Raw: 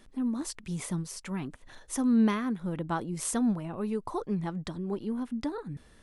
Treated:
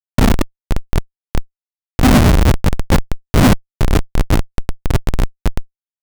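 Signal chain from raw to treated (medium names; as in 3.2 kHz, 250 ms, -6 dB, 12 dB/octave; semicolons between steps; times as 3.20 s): LPC vocoder at 8 kHz whisper; dynamic bell 720 Hz, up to -3 dB, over -45 dBFS, Q 1.8; Chebyshev shaper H 2 -28 dB, 5 -28 dB, 6 -30 dB, 8 -31 dB, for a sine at -11.5 dBFS; Schmitt trigger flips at -25 dBFS; loudness maximiser +29 dB; trim -5 dB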